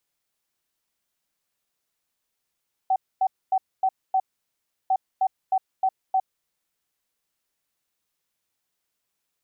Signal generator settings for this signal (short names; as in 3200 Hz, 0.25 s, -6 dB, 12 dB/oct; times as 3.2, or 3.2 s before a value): beep pattern sine 761 Hz, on 0.06 s, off 0.25 s, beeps 5, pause 0.70 s, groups 2, -17.5 dBFS